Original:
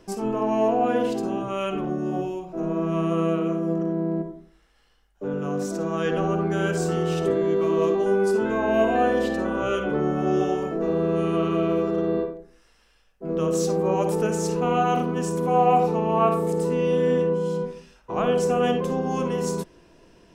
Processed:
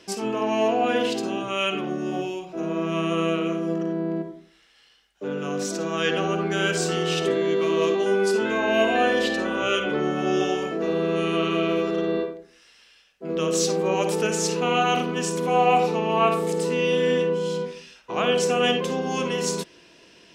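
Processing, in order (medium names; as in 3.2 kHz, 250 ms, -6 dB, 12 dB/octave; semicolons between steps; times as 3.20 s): frequency weighting D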